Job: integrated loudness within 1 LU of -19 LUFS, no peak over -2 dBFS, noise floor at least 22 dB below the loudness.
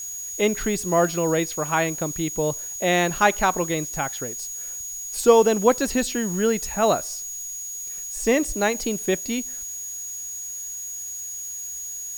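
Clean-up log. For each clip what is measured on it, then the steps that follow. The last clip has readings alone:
steady tone 6.7 kHz; tone level -31 dBFS; noise floor -34 dBFS; noise floor target -46 dBFS; loudness -24.0 LUFS; peak level -3.5 dBFS; loudness target -19.0 LUFS
-> band-stop 6.7 kHz, Q 30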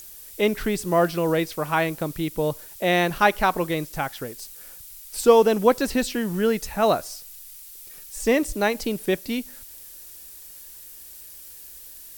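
steady tone not found; noise floor -43 dBFS; noise floor target -45 dBFS
-> noise reduction 6 dB, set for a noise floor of -43 dBFS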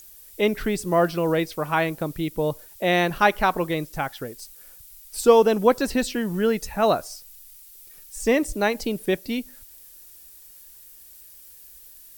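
noise floor -48 dBFS; loudness -23.0 LUFS; peak level -4.0 dBFS; loudness target -19.0 LUFS
-> trim +4 dB; peak limiter -2 dBFS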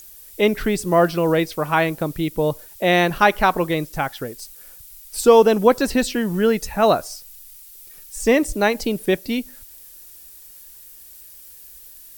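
loudness -19.0 LUFS; peak level -2.0 dBFS; noise floor -44 dBFS

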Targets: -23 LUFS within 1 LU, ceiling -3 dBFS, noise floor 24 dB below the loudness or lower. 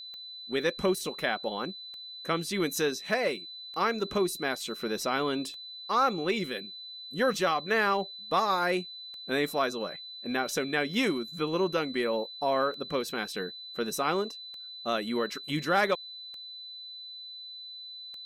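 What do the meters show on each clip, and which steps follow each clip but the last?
clicks found 11; steady tone 4 kHz; tone level -41 dBFS; loudness -30.0 LUFS; peak level -14.5 dBFS; loudness target -23.0 LUFS
-> de-click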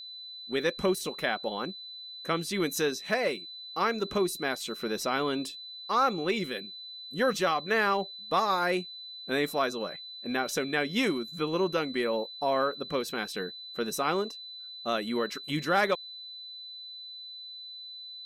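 clicks found 0; steady tone 4 kHz; tone level -41 dBFS
-> band-stop 4 kHz, Q 30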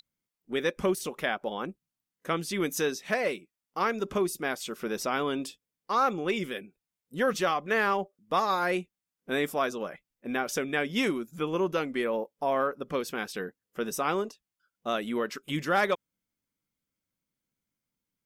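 steady tone not found; loudness -30.0 LUFS; peak level -14.0 dBFS; loudness target -23.0 LUFS
-> trim +7 dB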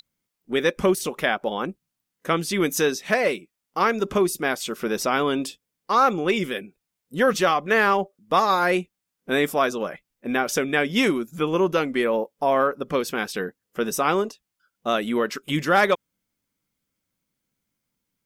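loudness -23.0 LUFS; peak level -7.0 dBFS; noise floor -83 dBFS

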